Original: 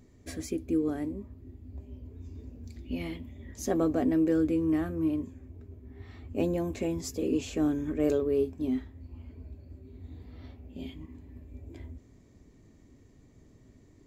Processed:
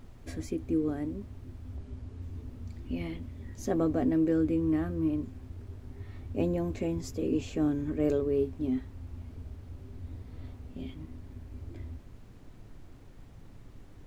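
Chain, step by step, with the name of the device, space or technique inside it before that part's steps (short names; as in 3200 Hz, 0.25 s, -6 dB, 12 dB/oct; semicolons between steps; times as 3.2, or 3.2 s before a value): car interior (bell 110 Hz +7.5 dB 0.97 oct; high shelf 4600 Hz -7 dB; brown noise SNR 16 dB); 1.77–2.22 LPF 9500 Hz 12 dB/oct; gain -1.5 dB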